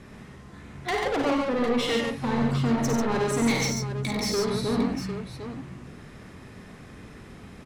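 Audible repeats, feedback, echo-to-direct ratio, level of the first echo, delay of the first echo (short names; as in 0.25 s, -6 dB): 4, no steady repeat, 0.5 dB, -5.5 dB, 52 ms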